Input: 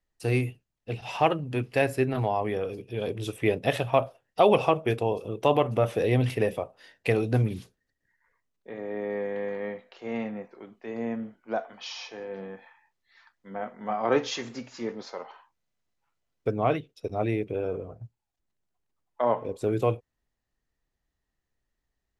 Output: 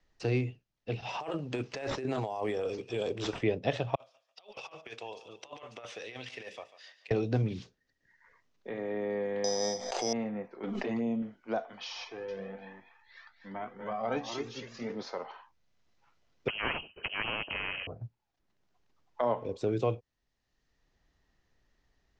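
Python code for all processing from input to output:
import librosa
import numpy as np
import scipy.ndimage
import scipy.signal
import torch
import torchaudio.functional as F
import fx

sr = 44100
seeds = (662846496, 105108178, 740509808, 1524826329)

y = fx.chain(x, sr, fx.bass_treble(bass_db=-10, treble_db=9),
    fx.over_compress(threshold_db=-32.0, ratio=-1.0),
    fx.sample_hold(seeds[0], rate_hz=11000.0, jitter_pct=0), at=(1.2, 3.43))
y = fx.chain(y, sr, fx.differentiator(),
    fx.over_compress(threshold_db=-47.0, ratio=-0.5),
    fx.echo_thinned(ms=143, feedback_pct=31, hz=400.0, wet_db=-15), at=(3.95, 7.11))
y = fx.chain(y, sr, fx.resample_bad(factor=8, down='filtered', up='zero_stuff'),
    fx.peak_eq(hz=740.0, db=12.0, octaves=0.78),
    fx.pre_swell(db_per_s=44.0), at=(9.44, 10.13))
y = fx.chain(y, sr, fx.dynamic_eq(hz=200.0, q=1.9, threshold_db=-47.0, ratio=4.0, max_db=4),
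    fx.env_flanger(rest_ms=6.1, full_db=-26.0),
    fx.pre_swell(db_per_s=20.0), at=(10.63, 11.22))
y = fx.chain(y, sr, fx.echo_single(ms=242, db=-8.5),
    fx.comb_cascade(direction='rising', hz=1.3), at=(12.04, 14.9))
y = fx.chain(y, sr, fx.self_delay(depth_ms=0.62),
    fx.freq_invert(carrier_hz=3000),
    fx.spectral_comp(ratio=2.0), at=(16.48, 17.87))
y = scipy.signal.sosfilt(scipy.signal.butter(6, 6400.0, 'lowpass', fs=sr, output='sos'), y)
y = fx.dynamic_eq(y, sr, hz=2100.0, q=0.78, threshold_db=-41.0, ratio=4.0, max_db=-4)
y = fx.band_squash(y, sr, depth_pct=40)
y = F.gain(torch.from_numpy(y), -2.0).numpy()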